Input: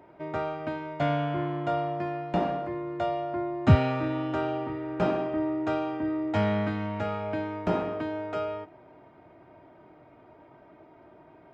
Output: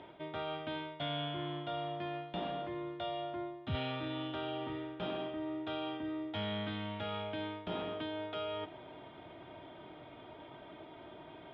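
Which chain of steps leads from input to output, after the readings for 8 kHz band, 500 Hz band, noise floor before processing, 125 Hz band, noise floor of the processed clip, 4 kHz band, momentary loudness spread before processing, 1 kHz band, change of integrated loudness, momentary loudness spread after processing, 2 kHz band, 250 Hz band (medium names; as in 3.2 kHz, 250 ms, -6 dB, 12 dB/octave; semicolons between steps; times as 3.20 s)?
no reading, -10.5 dB, -55 dBFS, -14.5 dB, -53 dBFS, +3.0 dB, 7 LU, -10.0 dB, -10.5 dB, 14 LU, -7.5 dB, -11.0 dB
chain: reverse; compression 4:1, threshold -41 dBFS, peak gain reduction 22.5 dB; reverse; resonant low-pass 3.4 kHz, resonance Q 11; trim +1.5 dB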